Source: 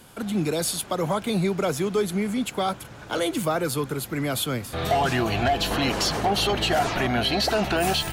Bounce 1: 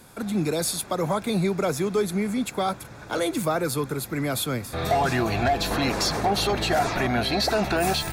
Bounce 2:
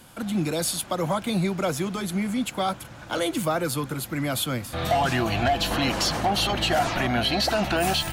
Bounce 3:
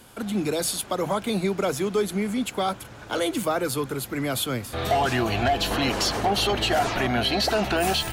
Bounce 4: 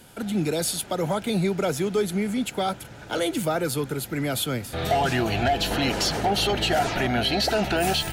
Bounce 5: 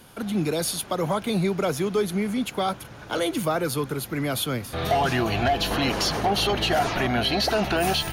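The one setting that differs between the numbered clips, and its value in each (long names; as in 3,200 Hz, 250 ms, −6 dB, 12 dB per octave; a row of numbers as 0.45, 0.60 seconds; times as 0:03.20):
notch filter, centre frequency: 3,000, 420, 160, 1,100, 7,700 Hertz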